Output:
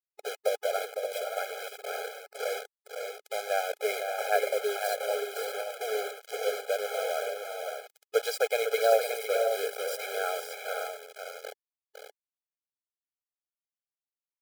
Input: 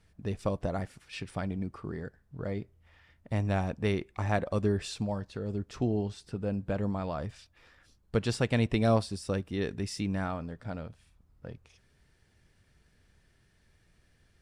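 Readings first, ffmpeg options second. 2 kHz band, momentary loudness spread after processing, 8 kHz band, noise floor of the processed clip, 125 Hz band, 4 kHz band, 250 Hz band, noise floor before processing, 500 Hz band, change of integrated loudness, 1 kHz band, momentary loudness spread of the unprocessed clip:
+6.5 dB, 13 LU, +8.0 dB, under -85 dBFS, under -40 dB, +5.5 dB, under -20 dB, -67 dBFS, +6.0 dB, +1.5 dB, +5.5 dB, 13 LU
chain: -filter_complex "[0:a]asplit=2[a][b];[b]asplit=5[c][d][e][f][g];[c]adelay=465,afreqshift=-38,volume=-18dB[h];[d]adelay=930,afreqshift=-76,volume=-23.2dB[i];[e]adelay=1395,afreqshift=-114,volume=-28.4dB[j];[f]adelay=1860,afreqshift=-152,volume=-33.6dB[k];[g]adelay=2325,afreqshift=-190,volume=-38.8dB[l];[h][i][j][k][l]amix=inputs=5:normalize=0[m];[a][m]amix=inputs=2:normalize=0,acrusher=bits=5:mix=0:aa=0.000001,asplit=2[n][o];[o]aecho=0:1:506|574:0.447|0.422[p];[n][p]amix=inputs=2:normalize=0,adynamicequalizer=threshold=0.00224:dfrequency=5500:dqfactor=1.1:tfrequency=5500:tqfactor=1.1:attack=5:release=100:ratio=0.375:range=2.5:mode=cutabove:tftype=bell,afftfilt=real='re*eq(mod(floor(b*sr/1024/420),2),1)':imag='im*eq(mod(floor(b*sr/1024/420),2),1)':win_size=1024:overlap=0.75,volume=5.5dB"

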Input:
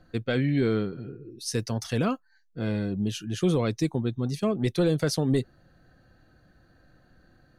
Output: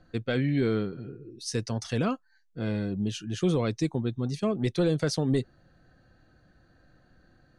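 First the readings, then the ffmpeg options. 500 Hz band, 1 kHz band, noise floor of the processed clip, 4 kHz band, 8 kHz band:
-1.5 dB, -1.5 dB, -65 dBFS, -1.5 dB, -2.5 dB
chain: -af "lowpass=f=9.1k:w=0.5412,lowpass=f=9.1k:w=1.3066,volume=-1.5dB"

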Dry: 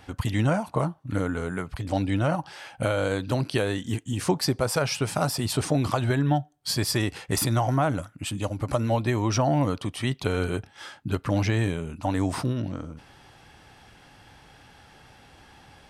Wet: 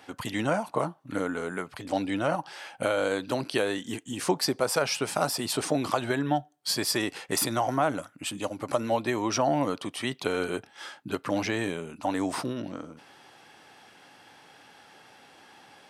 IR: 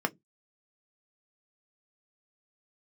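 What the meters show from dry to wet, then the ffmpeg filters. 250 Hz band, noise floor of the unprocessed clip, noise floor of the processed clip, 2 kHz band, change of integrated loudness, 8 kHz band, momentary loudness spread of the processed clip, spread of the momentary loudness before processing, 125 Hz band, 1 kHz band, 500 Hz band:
-3.0 dB, -54 dBFS, -57 dBFS, 0.0 dB, -2.5 dB, 0.0 dB, 9 LU, 8 LU, -12.5 dB, 0.0 dB, -0.5 dB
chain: -af "highpass=260"

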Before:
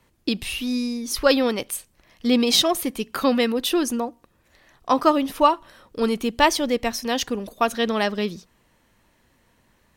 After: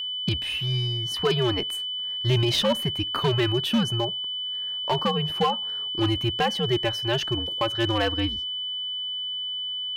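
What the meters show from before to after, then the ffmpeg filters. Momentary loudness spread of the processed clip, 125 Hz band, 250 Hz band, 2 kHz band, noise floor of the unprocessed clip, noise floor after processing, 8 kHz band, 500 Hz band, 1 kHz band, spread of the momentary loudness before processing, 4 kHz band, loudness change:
5 LU, +15.5 dB, -5.5 dB, -4.0 dB, -63 dBFS, -31 dBFS, -12.0 dB, -4.5 dB, -6.0 dB, 10 LU, +4.5 dB, -2.5 dB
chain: -af "highpass=f=100:p=1,bass=f=250:g=-3,treble=f=4k:g=-13,bandreject=f=2.4k:w=25,alimiter=limit=-12dB:level=0:latency=1:release=248,afreqshift=-120,aeval=exprs='val(0)+0.0398*sin(2*PI*3000*n/s)':c=same,volume=16dB,asoftclip=hard,volume=-16dB"

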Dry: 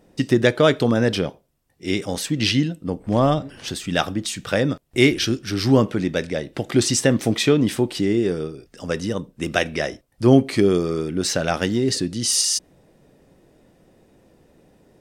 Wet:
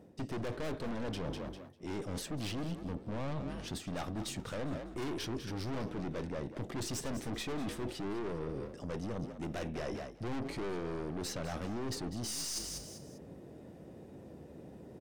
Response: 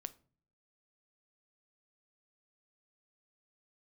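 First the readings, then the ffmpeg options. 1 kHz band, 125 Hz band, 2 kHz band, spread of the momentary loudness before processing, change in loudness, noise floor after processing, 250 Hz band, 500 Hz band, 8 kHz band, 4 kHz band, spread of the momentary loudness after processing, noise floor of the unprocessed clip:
-15.5 dB, -16.5 dB, -20.5 dB, 11 LU, -18.5 dB, -52 dBFS, -18.5 dB, -19.5 dB, -18.0 dB, -19.0 dB, 13 LU, -61 dBFS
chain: -filter_complex "[0:a]highpass=f=59:w=0.5412,highpass=f=59:w=1.3066,tiltshelf=f=970:g=5.5,aeval=exprs='(tanh(17.8*val(0)+0.5)-tanh(0.5))/17.8':c=same,asplit=4[a][b][c][d];[b]adelay=199,afreqshift=46,volume=-13dB[e];[c]adelay=398,afreqshift=92,volume=-23.2dB[f];[d]adelay=597,afreqshift=138,volume=-33.3dB[g];[a][e][f][g]amix=inputs=4:normalize=0,areverse,acompressor=threshold=-40dB:ratio=4,areverse,volume=2dB"

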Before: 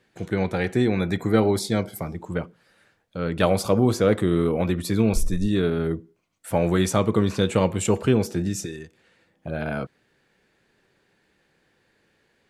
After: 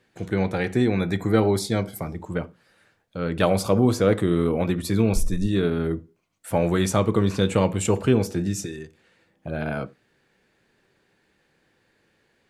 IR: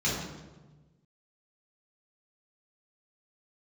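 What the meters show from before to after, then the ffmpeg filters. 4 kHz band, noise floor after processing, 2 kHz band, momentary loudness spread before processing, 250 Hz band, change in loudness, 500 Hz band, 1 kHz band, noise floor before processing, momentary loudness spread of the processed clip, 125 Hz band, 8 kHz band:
-0.5 dB, -67 dBFS, 0.0 dB, 12 LU, 0.0 dB, 0.0 dB, 0.0 dB, 0.0 dB, -67 dBFS, 12 LU, +0.5 dB, 0.0 dB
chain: -filter_complex "[0:a]asplit=2[a][b];[1:a]atrim=start_sample=2205,atrim=end_sample=6174,asetrate=66150,aresample=44100[c];[b][c]afir=irnorm=-1:irlink=0,volume=-25dB[d];[a][d]amix=inputs=2:normalize=0"

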